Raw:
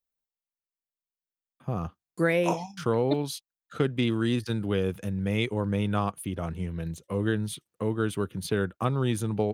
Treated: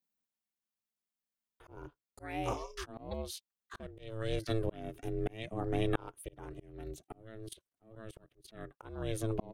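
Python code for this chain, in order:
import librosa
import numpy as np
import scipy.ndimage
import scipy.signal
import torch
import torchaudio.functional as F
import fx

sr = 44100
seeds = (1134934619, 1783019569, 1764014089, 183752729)

y = fx.level_steps(x, sr, step_db=18, at=(7.01, 8.47), fade=0.02)
y = y * np.sin(2.0 * np.pi * 220.0 * np.arange(len(y)) / sr)
y = fx.auto_swell(y, sr, attack_ms=790.0)
y = y * 10.0 ** (2.5 / 20.0)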